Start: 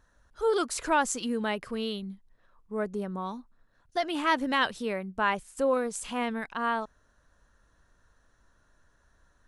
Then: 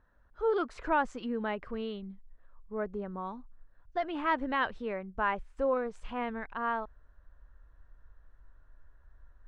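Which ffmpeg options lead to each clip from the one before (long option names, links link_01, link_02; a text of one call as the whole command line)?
ffmpeg -i in.wav -af "lowpass=2000,asubboost=boost=6:cutoff=68,volume=-2.5dB" out.wav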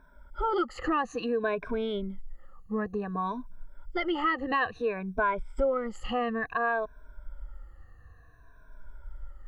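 ffmpeg -i in.wav -af "afftfilt=real='re*pow(10,21/40*sin(2*PI*(1.6*log(max(b,1)*sr/1024/100)/log(2)-(-0.57)*(pts-256)/sr)))':imag='im*pow(10,21/40*sin(2*PI*(1.6*log(max(b,1)*sr/1024/100)/log(2)-(-0.57)*(pts-256)/sr)))':win_size=1024:overlap=0.75,acompressor=threshold=-32dB:ratio=3,volume=5.5dB" out.wav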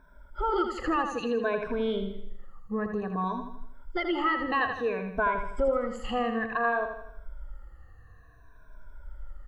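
ffmpeg -i in.wav -af "aecho=1:1:81|162|243|324|405|486:0.447|0.21|0.0987|0.0464|0.0218|0.0102" out.wav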